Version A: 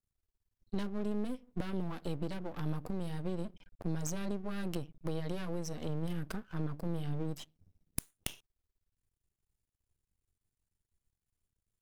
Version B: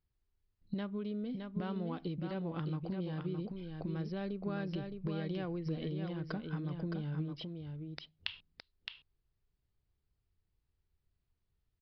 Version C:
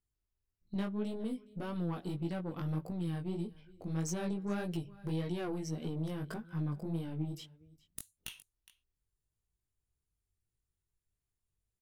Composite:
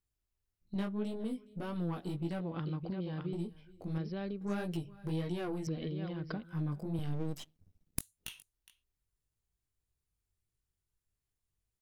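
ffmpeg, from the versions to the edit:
-filter_complex "[1:a]asplit=3[a][b][c];[2:a]asplit=5[d][e][f][g][h];[d]atrim=end=2.412[i];[a]atrim=start=2.408:end=3.332[j];[e]atrim=start=3.328:end=3.982[k];[b]atrim=start=3.978:end=4.412[l];[f]atrim=start=4.408:end=5.672[m];[c]atrim=start=5.668:end=6.432[n];[g]atrim=start=6.428:end=6.992[o];[0:a]atrim=start=6.988:end=7.992[p];[h]atrim=start=7.988[q];[i][j]acrossfade=d=0.004:c1=hsin:c2=hsin[r];[r][k]acrossfade=d=0.004:c1=hsin:c2=hsin[s];[s][l]acrossfade=d=0.004:c1=hsin:c2=hsin[t];[t][m]acrossfade=d=0.004:c1=hsin:c2=hsin[u];[u][n]acrossfade=d=0.004:c1=hsin:c2=hsin[v];[v][o]acrossfade=d=0.004:c1=hsin:c2=hsin[w];[w][p]acrossfade=d=0.004:c1=hsin:c2=hsin[x];[x][q]acrossfade=d=0.004:c1=hsin:c2=hsin"

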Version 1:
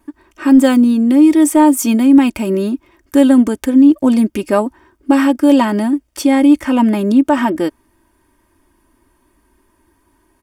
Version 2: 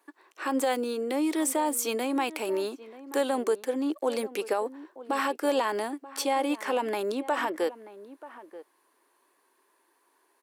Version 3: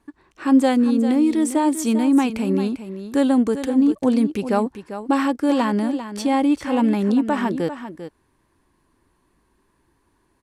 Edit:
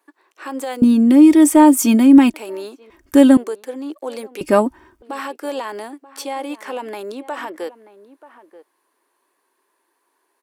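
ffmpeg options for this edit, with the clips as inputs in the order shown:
-filter_complex "[0:a]asplit=3[a][b][c];[1:a]asplit=4[d][e][f][g];[d]atrim=end=0.822[h];[a]atrim=start=0.818:end=2.342[i];[e]atrim=start=2.338:end=2.902[j];[b]atrim=start=2.898:end=3.372[k];[f]atrim=start=3.368:end=4.412[l];[c]atrim=start=4.408:end=5.022[m];[g]atrim=start=5.018[n];[h][i]acrossfade=d=0.004:c1=hsin:c2=hsin[o];[o][j]acrossfade=d=0.004:c1=hsin:c2=hsin[p];[p][k]acrossfade=d=0.004:c1=hsin:c2=hsin[q];[q][l]acrossfade=d=0.004:c1=hsin:c2=hsin[r];[r][m]acrossfade=d=0.004:c1=hsin:c2=hsin[s];[s][n]acrossfade=d=0.004:c1=hsin:c2=hsin"

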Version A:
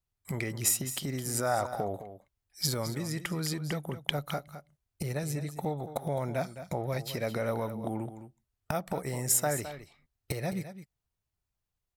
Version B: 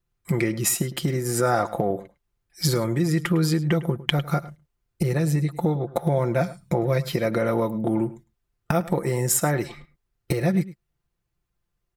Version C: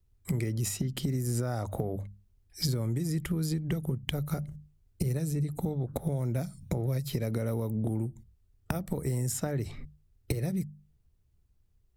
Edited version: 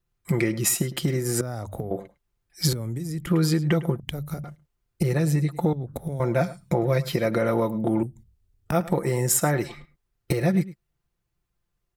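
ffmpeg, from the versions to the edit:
-filter_complex "[2:a]asplit=5[a][b][c][d][e];[1:a]asplit=6[f][g][h][i][j][k];[f]atrim=end=1.412[l];[a]atrim=start=1.408:end=1.912[m];[g]atrim=start=1.908:end=2.732[n];[b]atrim=start=2.728:end=3.272[o];[h]atrim=start=3.268:end=4.002[p];[c]atrim=start=3.998:end=4.442[q];[i]atrim=start=4.438:end=5.732[r];[d]atrim=start=5.728:end=6.202[s];[j]atrim=start=6.198:end=8.032[t];[e]atrim=start=8.028:end=8.722[u];[k]atrim=start=8.718[v];[l][m]acrossfade=d=0.004:c1=hsin:c2=hsin[w];[w][n]acrossfade=d=0.004:c1=hsin:c2=hsin[x];[x][o]acrossfade=d=0.004:c1=hsin:c2=hsin[y];[y][p]acrossfade=d=0.004:c1=hsin:c2=hsin[z];[z][q]acrossfade=d=0.004:c1=hsin:c2=hsin[aa];[aa][r]acrossfade=d=0.004:c1=hsin:c2=hsin[ab];[ab][s]acrossfade=d=0.004:c1=hsin:c2=hsin[ac];[ac][t]acrossfade=d=0.004:c1=hsin:c2=hsin[ad];[ad][u]acrossfade=d=0.004:c1=hsin:c2=hsin[ae];[ae][v]acrossfade=d=0.004:c1=hsin:c2=hsin"

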